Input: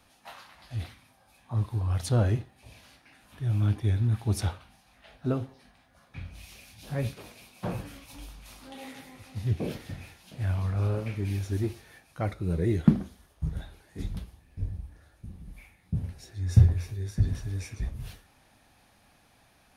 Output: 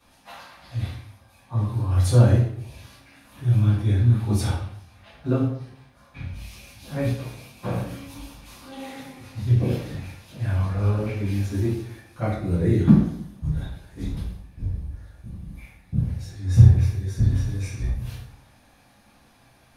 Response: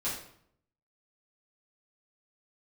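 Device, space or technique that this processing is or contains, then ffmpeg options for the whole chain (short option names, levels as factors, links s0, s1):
bathroom: -filter_complex "[0:a]asettb=1/sr,asplit=3[s0][s1][s2];[s0]atrim=end=1.744[s3];[s1]atrim=start=1.74:end=3.57,asetpts=PTS-STARTPTS,afade=t=in:d=0.004:c=qsin,afade=t=out:st=1.826:d=0.004:c=qsin,highshelf=f=7600:g=4.5[s4];[s2]atrim=start=3.566[s5];[s3][s4]acrossfade=d=0.004:c1=hsin:c2=qsin[s6];[s6][s5]acrossfade=d=0.004:c1=qsin:c2=hsin[s7];[1:a]atrim=start_sample=2205[s8];[s7][s8]afir=irnorm=-1:irlink=0"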